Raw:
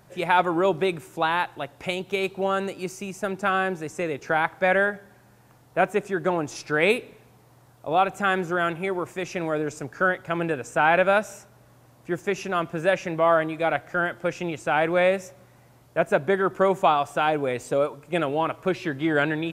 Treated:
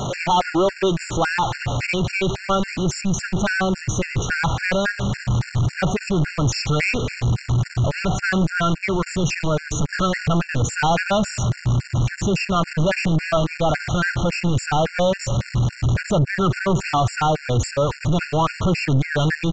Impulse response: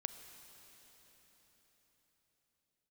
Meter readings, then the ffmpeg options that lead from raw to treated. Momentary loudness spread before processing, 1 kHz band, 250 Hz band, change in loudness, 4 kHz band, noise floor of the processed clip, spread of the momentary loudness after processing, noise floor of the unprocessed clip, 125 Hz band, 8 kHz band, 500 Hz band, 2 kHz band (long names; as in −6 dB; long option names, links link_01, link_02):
9 LU, +1.0 dB, +6.5 dB, +3.5 dB, +8.0 dB, −38 dBFS, 4 LU, −56 dBFS, +16.0 dB, +12.5 dB, 0.0 dB, +2.0 dB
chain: -af "aeval=exprs='val(0)+0.5*0.0501*sgn(val(0))':channel_layout=same,asubboost=boost=8.5:cutoff=130,aresample=16000,asoftclip=type=tanh:threshold=-21dB,aresample=44100,afftfilt=real='re*gt(sin(2*PI*3.6*pts/sr)*(1-2*mod(floor(b*sr/1024/1400),2)),0)':imag='im*gt(sin(2*PI*3.6*pts/sr)*(1-2*mod(floor(b*sr/1024/1400),2)),0)':win_size=1024:overlap=0.75,volume=8dB"